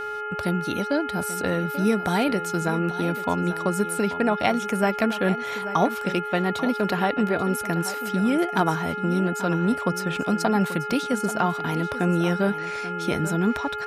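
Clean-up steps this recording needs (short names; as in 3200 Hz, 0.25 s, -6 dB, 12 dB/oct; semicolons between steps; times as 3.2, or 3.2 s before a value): de-hum 423 Hz, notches 7; notch 1400 Hz, Q 30; inverse comb 0.836 s -13.5 dB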